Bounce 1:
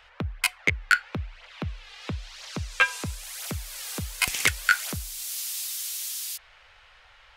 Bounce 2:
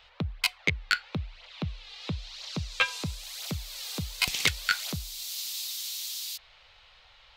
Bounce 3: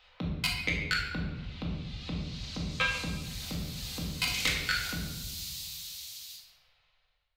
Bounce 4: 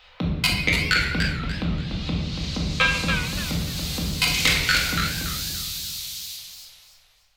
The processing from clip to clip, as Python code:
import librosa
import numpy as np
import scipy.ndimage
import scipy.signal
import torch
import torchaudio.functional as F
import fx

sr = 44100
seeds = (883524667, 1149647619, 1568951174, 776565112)

y1 = fx.graphic_eq_15(x, sr, hz=(160, 1600, 4000, 10000), db=(5, -6, 8, -7))
y1 = F.gain(torch.from_numpy(y1), -2.5).numpy()
y2 = fx.fade_out_tail(y1, sr, length_s=2.31)
y2 = fx.room_shoebox(y2, sr, seeds[0], volume_m3=590.0, walls='mixed', distance_m=2.0)
y2 = F.gain(torch.from_numpy(y2), -6.5).numpy()
y3 = fx.echo_warbled(y2, sr, ms=288, feedback_pct=31, rate_hz=2.8, cents=148, wet_db=-6.0)
y3 = F.gain(torch.from_numpy(y3), 9.0).numpy()